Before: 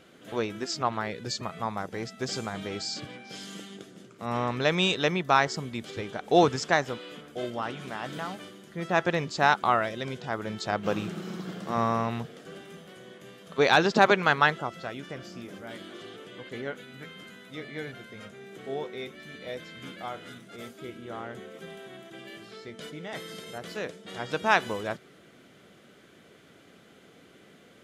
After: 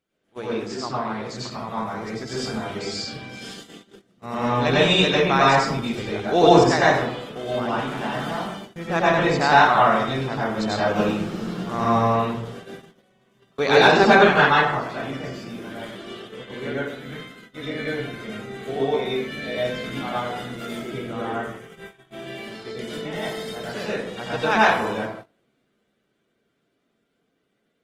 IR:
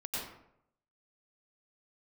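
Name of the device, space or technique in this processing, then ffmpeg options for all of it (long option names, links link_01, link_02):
speakerphone in a meeting room: -filter_complex "[0:a]asettb=1/sr,asplit=3[link_01][link_02][link_03];[link_01]atrim=end=21.334[link_04];[link_02]atrim=start=21.33:end=21.99,asetpts=PTS-STARTPTS,afade=type=in:duration=0.004:curve=qsin,afade=type=out:start_time=0.656:duration=0.004:curve=qsin,equalizer=frequency=250:width_type=o:width=0.67:gain=-12,equalizer=frequency=630:width_type=o:width=0.67:gain=-11,equalizer=frequency=4000:width_type=o:width=0.67:gain=-8[link_05];[link_03]atrim=start=21.986[link_06];[link_04][link_05]acrossfade=duration=0.004:curve1=hsin:curve2=qsin[link_07];[link_07][link_06]acrossfade=duration=0.004:curve1=qsin:curve2=hsin[link_08];[1:a]atrim=start_sample=2205[link_09];[link_08][link_09]afir=irnorm=-1:irlink=0,dynaudnorm=framelen=220:gausssize=31:maxgain=9dB,agate=range=-20dB:threshold=-37dB:ratio=16:detection=peak" -ar 48000 -c:a libopus -b:a 20k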